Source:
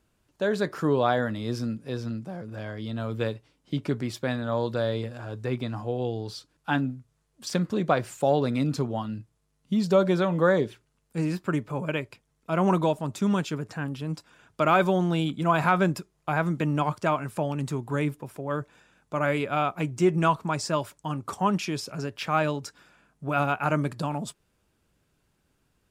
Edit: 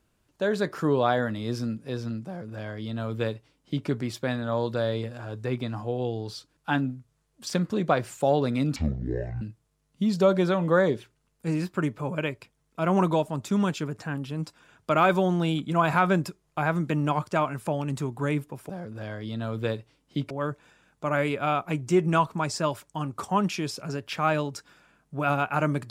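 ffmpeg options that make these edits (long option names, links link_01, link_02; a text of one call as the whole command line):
ffmpeg -i in.wav -filter_complex "[0:a]asplit=5[link_01][link_02][link_03][link_04][link_05];[link_01]atrim=end=8.764[link_06];[link_02]atrim=start=8.76:end=9.12,asetpts=PTS-STARTPTS,asetrate=24255,aresample=44100,atrim=end_sample=28865,asetpts=PTS-STARTPTS[link_07];[link_03]atrim=start=9.116:end=18.402[link_08];[link_04]atrim=start=2.258:end=3.872[link_09];[link_05]atrim=start=18.398[link_10];[link_06][link_07]acrossfade=duration=0.004:curve1=hsin:curve2=hsin[link_11];[link_11][link_08]acrossfade=duration=0.004:curve1=hsin:curve2=hsin[link_12];[link_12][link_09]acrossfade=duration=0.004:curve1=hsin:curve2=hsin[link_13];[link_13][link_10]acrossfade=duration=0.004:curve1=hsin:curve2=hsin" out.wav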